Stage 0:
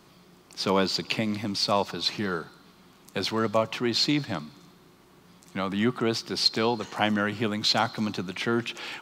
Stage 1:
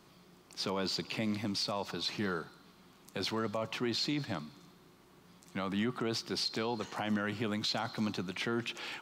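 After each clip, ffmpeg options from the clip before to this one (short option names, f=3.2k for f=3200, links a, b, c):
-af "alimiter=limit=-20dB:level=0:latency=1:release=36,volume=-5dB"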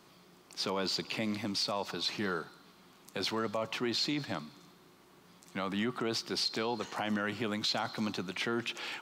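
-af "lowshelf=f=150:g=-8.5,volume=2dB"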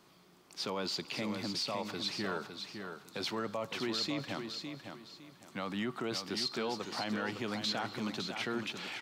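-af "aecho=1:1:558|1116|1674:0.447|0.125|0.035,volume=-3dB"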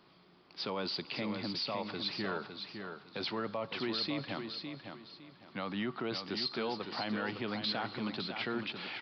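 -af "aresample=11025,aresample=44100"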